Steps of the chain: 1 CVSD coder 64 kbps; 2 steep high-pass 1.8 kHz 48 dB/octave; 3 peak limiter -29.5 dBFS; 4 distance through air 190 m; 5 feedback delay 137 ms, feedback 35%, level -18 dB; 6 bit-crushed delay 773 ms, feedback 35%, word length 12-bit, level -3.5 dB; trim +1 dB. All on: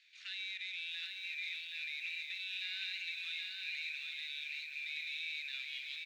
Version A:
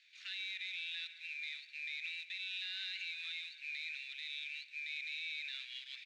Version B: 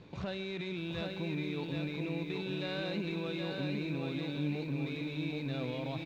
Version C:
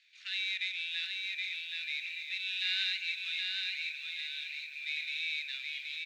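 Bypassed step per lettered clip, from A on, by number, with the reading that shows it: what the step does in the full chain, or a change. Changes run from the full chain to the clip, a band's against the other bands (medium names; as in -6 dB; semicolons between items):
6, momentary loudness spread change +1 LU; 2, crest factor change -2.0 dB; 3, mean gain reduction 3.0 dB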